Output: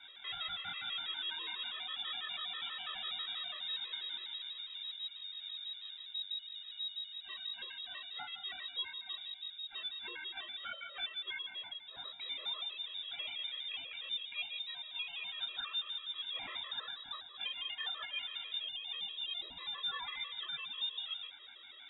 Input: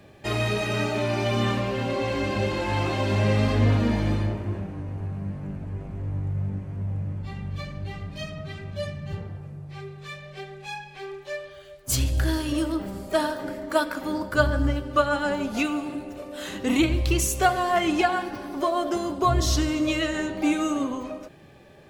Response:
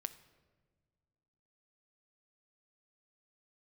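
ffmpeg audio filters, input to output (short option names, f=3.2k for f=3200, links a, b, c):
-filter_complex "[0:a]acompressor=threshold=-37dB:ratio=3,lowshelf=f=300:g=-4.5,asettb=1/sr,asplit=3[a][b][c];[a]atrim=end=6.354[d];[b]atrim=start=6.35:end=8.75,asetpts=PTS-STARTPTS,afade=t=in:d=0.004:c=qsin,afade=t=out:st=2.396:d=0.004:c=qsin,aeval=exprs='val(0)+0.002*sin(2*PI*980*n/s)':c=same[e];[c]atrim=start=8.746[f];[d][e]acrossfade=d=0.004:c1=hsin:c2=qsin[g];[g][f]acrossfade=d=0.004:c1=qsin:c2=hsin,alimiter=level_in=7.5dB:limit=-24dB:level=0:latency=1:release=26,volume=-7.5dB,flanger=delay=20:depth=7.3:speed=1.6,highpass=f=130:p=1,equalizer=f=900:w=4.2:g=-8.5,lowpass=f=3.3k:t=q:w=0.5098,lowpass=f=3.3k:t=q:w=0.6013,lowpass=f=3.3k:t=q:w=0.9,lowpass=f=3.3k:t=q:w=2.563,afreqshift=-3900,afftfilt=real='re*gt(sin(2*PI*6.1*pts/sr)*(1-2*mod(floor(b*sr/1024/340),2)),0)':imag='im*gt(sin(2*PI*6.1*pts/sr)*(1-2*mod(floor(b*sr/1024/340),2)),0)':win_size=1024:overlap=0.75,volume=6dB"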